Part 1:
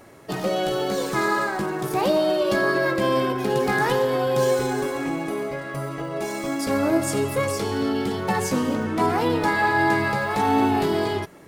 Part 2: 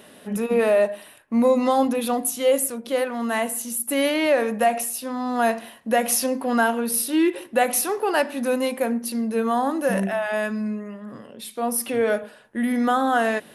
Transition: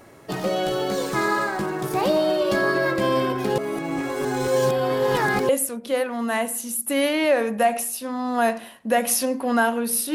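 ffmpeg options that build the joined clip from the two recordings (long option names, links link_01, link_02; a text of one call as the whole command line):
ffmpeg -i cue0.wav -i cue1.wav -filter_complex "[0:a]apad=whole_dur=10.14,atrim=end=10.14,asplit=2[link_01][link_02];[link_01]atrim=end=3.582[link_03];[link_02]atrim=start=3.578:end=5.492,asetpts=PTS-STARTPTS,areverse[link_04];[1:a]atrim=start=2.498:end=7.15[link_05];[link_03][link_04]acrossfade=duration=0.004:curve1=hsin:curve2=hsin[link_06];[link_06][link_05]acrossfade=duration=0.004:curve1=hsin:curve2=hsin" out.wav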